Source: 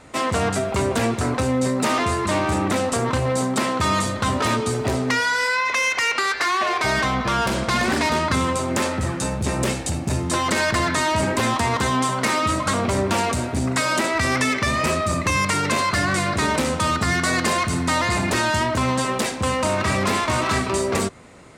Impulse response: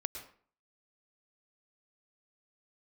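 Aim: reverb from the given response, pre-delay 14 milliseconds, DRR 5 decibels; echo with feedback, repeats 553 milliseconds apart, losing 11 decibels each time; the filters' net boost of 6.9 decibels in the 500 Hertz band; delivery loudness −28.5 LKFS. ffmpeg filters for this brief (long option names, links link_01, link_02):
-filter_complex "[0:a]equalizer=frequency=500:width_type=o:gain=8.5,aecho=1:1:553|1106|1659:0.282|0.0789|0.0221,asplit=2[link_01][link_02];[1:a]atrim=start_sample=2205,adelay=14[link_03];[link_02][link_03]afir=irnorm=-1:irlink=0,volume=-5dB[link_04];[link_01][link_04]amix=inputs=2:normalize=0,volume=-11dB"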